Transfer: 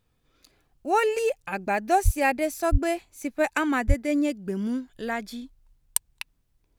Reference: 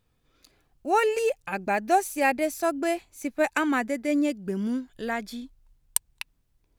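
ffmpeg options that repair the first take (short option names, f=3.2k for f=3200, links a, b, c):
-filter_complex "[0:a]asplit=3[a][b][c];[a]afade=t=out:st=2.04:d=0.02[d];[b]highpass=f=140:w=0.5412,highpass=f=140:w=1.3066,afade=t=in:st=2.04:d=0.02,afade=t=out:st=2.16:d=0.02[e];[c]afade=t=in:st=2.16:d=0.02[f];[d][e][f]amix=inputs=3:normalize=0,asplit=3[g][h][i];[g]afade=t=out:st=2.71:d=0.02[j];[h]highpass=f=140:w=0.5412,highpass=f=140:w=1.3066,afade=t=in:st=2.71:d=0.02,afade=t=out:st=2.83:d=0.02[k];[i]afade=t=in:st=2.83:d=0.02[l];[j][k][l]amix=inputs=3:normalize=0,asplit=3[m][n][o];[m]afade=t=out:st=3.87:d=0.02[p];[n]highpass=f=140:w=0.5412,highpass=f=140:w=1.3066,afade=t=in:st=3.87:d=0.02,afade=t=out:st=3.99:d=0.02[q];[o]afade=t=in:st=3.99:d=0.02[r];[p][q][r]amix=inputs=3:normalize=0"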